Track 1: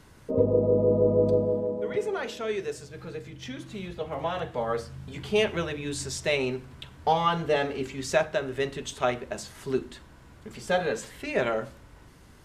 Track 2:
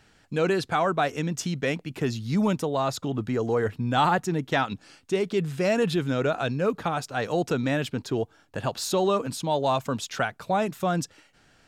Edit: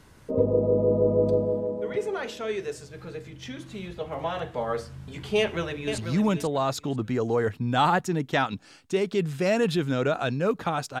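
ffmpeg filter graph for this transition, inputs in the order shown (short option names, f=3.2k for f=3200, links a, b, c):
-filter_complex "[0:a]apad=whole_dur=11,atrim=end=11,atrim=end=5.982[a];[1:a]atrim=start=2.168:end=7.19[b];[a][b]acrossfade=d=0.004:c1=hsin:c2=hsin,asplit=2[c][d];[d]afade=t=in:st=5.38:d=0.01,afade=t=out:st=5.98:d=0.01,aecho=0:1:490|980|1470:0.421697|0.0843393|0.0168679[e];[c][e]amix=inputs=2:normalize=0"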